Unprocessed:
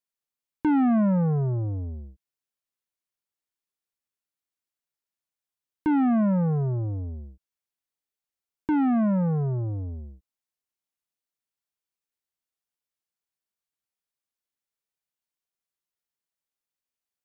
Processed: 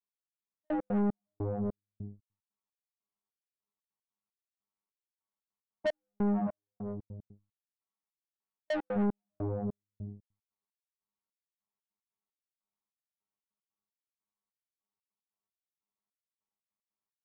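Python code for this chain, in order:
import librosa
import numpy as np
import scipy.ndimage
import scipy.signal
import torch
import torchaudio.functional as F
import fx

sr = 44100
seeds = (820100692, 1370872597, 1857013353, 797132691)

y = fx.lower_of_two(x, sr, delay_ms=0.91)
y = scipy.signal.sosfilt(scipy.signal.butter(2, 52.0, 'highpass', fs=sr, output='sos'), y)
y = fx.hum_notches(y, sr, base_hz=60, count=5)
y = y + 0.8 * np.pad(y, (int(4.6 * sr / 1000.0), 0))[:len(y)]
y = fx.rider(y, sr, range_db=4, speed_s=0.5)
y = fx.dynamic_eq(y, sr, hz=580.0, q=2.3, threshold_db=-41.0, ratio=4.0, max_db=7)
y = fx.robotise(y, sr, hz=102.0)
y = scipy.signal.savgol_filter(y, 65, 4, mode='constant')
y = 10.0 ** (-25.5 / 20.0) * np.tanh(y / 10.0 ** (-25.5 / 20.0))
y = fx.step_gate(y, sr, bpm=150, pattern='x...xx.x.xx...xx', floor_db=-60.0, edge_ms=4.5)
y = fx.low_shelf(y, sr, hz=430.0, db=-7.0, at=(6.47, 8.96))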